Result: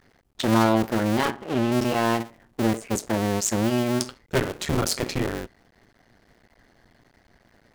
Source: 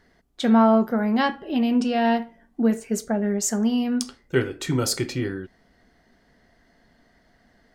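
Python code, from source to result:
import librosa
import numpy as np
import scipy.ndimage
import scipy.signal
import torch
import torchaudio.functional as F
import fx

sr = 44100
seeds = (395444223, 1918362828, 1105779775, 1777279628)

p1 = fx.cycle_switch(x, sr, every=2, mode='muted')
p2 = 10.0 ** (-22.0 / 20.0) * (np.abs((p1 / 10.0 ** (-22.0 / 20.0) + 3.0) % 4.0 - 2.0) - 1.0)
p3 = p1 + (p2 * 10.0 ** (-5.0 / 20.0))
y = fx.lowpass(p3, sr, hz=3600.0, slope=6, at=(1.3, 1.72))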